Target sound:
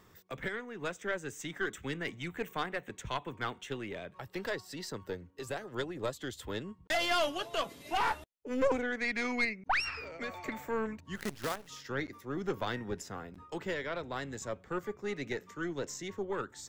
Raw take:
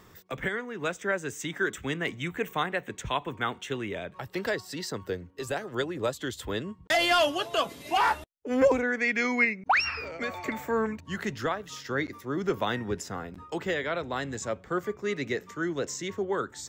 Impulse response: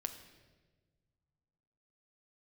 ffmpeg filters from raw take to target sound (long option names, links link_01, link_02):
-filter_complex "[0:a]aeval=exprs='(tanh(7.94*val(0)+0.6)-tanh(0.6))/7.94':channel_layout=same,asplit=3[link_01][link_02][link_03];[link_01]afade=type=out:start_time=11.15:duration=0.02[link_04];[link_02]acrusher=bits=6:dc=4:mix=0:aa=0.000001,afade=type=in:start_time=11.15:duration=0.02,afade=type=out:start_time=11.67:duration=0.02[link_05];[link_03]afade=type=in:start_time=11.67:duration=0.02[link_06];[link_04][link_05][link_06]amix=inputs=3:normalize=0,volume=-3.5dB"